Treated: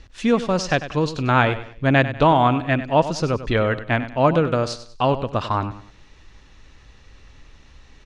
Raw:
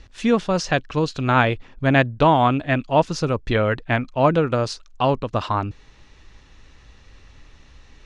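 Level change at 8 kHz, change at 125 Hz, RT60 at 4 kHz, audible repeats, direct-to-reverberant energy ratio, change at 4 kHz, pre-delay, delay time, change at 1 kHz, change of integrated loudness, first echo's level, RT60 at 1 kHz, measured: 0.0 dB, +0.5 dB, no reverb, 3, no reverb, +0.5 dB, no reverb, 97 ms, +0.5 dB, 0.0 dB, -13.0 dB, no reverb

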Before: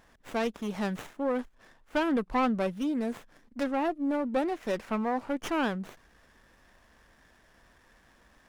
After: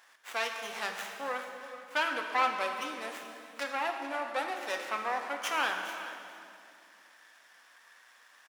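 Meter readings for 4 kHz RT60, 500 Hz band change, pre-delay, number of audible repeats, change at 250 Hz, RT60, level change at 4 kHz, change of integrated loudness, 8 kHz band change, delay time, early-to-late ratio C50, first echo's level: 2.0 s, -6.5 dB, 3 ms, 1, -17.5 dB, 2.5 s, +5.5 dB, -3.0 dB, +5.5 dB, 429 ms, 4.5 dB, -15.5 dB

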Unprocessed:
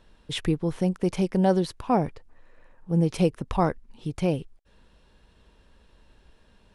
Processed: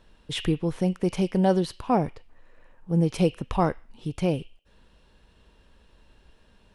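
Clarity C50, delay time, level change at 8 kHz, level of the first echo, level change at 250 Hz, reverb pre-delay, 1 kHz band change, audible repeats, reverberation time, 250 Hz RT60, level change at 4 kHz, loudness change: 17.0 dB, no echo, 0.0 dB, no echo, 0.0 dB, 4 ms, 0.0 dB, no echo, 0.45 s, 0.45 s, +1.0 dB, 0.0 dB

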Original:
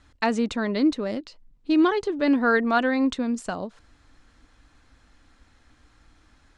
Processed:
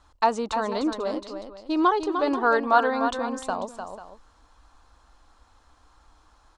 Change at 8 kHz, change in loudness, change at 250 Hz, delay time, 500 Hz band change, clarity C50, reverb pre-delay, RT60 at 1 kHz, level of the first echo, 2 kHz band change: +0.5 dB, -1.0 dB, -6.0 dB, 301 ms, +0.5 dB, no reverb, no reverb, no reverb, -8.0 dB, -2.5 dB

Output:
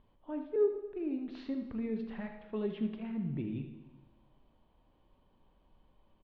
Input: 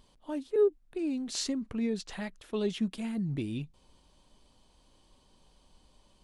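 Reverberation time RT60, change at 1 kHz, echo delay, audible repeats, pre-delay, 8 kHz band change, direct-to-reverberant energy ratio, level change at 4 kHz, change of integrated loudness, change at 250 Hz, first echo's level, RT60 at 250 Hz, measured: 1.2 s, -3.5 dB, 79 ms, 1, 20 ms, under -35 dB, 5.0 dB, -18.0 dB, -4.0 dB, -3.5 dB, -10.0 dB, 1.3 s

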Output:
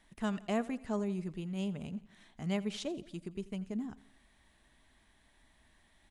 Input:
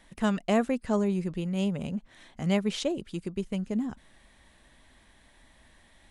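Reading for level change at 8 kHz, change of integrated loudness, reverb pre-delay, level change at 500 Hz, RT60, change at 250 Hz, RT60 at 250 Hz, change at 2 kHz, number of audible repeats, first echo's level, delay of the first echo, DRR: -8.0 dB, -8.0 dB, no reverb, -9.0 dB, no reverb, -8.0 dB, no reverb, -8.0 dB, 3, -19.5 dB, 85 ms, no reverb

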